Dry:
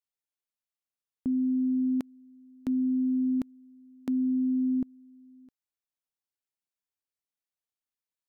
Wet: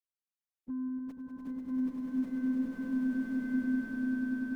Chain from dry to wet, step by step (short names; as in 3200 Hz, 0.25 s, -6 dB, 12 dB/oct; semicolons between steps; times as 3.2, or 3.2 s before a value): dynamic EQ 120 Hz, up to -4 dB, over -58 dBFS, Q 5.7; plain phase-vocoder stretch 0.55×; added harmonics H 8 -29 dB, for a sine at -22 dBFS; swelling echo 98 ms, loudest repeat 8, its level -5 dB; bloom reverb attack 1.14 s, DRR -6 dB; gain -6.5 dB